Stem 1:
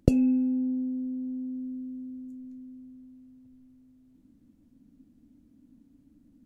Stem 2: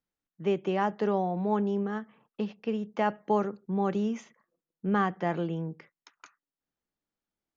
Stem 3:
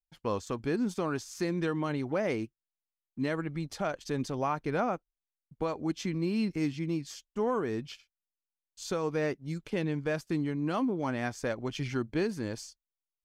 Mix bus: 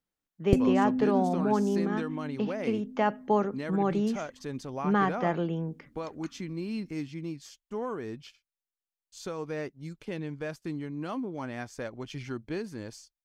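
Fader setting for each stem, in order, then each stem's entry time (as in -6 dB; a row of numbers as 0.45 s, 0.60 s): -2.5 dB, +1.0 dB, -4.5 dB; 0.45 s, 0.00 s, 0.35 s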